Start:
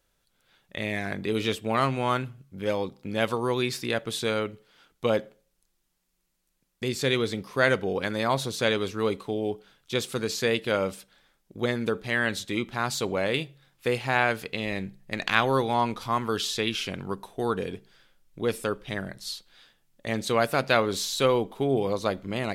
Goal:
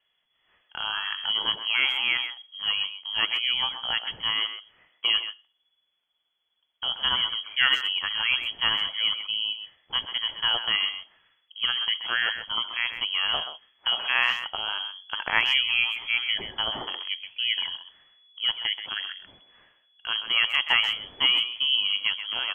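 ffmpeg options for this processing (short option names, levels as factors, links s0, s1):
-filter_complex "[0:a]lowpass=f=2900:t=q:w=0.5098,lowpass=f=2900:t=q:w=0.6013,lowpass=f=2900:t=q:w=0.9,lowpass=f=2900:t=q:w=2.563,afreqshift=-3400,asplit=2[s0][s1];[s1]adelay=130,highpass=300,lowpass=3400,asoftclip=type=hard:threshold=0.2,volume=0.355[s2];[s0][s2]amix=inputs=2:normalize=0"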